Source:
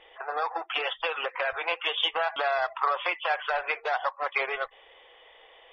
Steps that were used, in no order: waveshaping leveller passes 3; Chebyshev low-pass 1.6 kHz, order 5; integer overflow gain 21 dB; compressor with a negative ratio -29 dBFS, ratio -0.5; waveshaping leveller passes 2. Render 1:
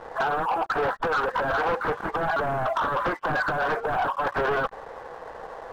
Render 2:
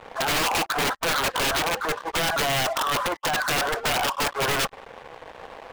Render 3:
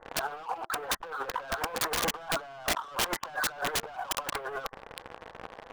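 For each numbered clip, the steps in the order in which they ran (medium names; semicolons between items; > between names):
integer overflow > first waveshaping leveller > Chebyshev low-pass > compressor with a negative ratio > second waveshaping leveller; compressor with a negative ratio > Chebyshev low-pass > first waveshaping leveller > integer overflow > second waveshaping leveller; second waveshaping leveller > Chebyshev low-pass > first waveshaping leveller > compressor with a negative ratio > integer overflow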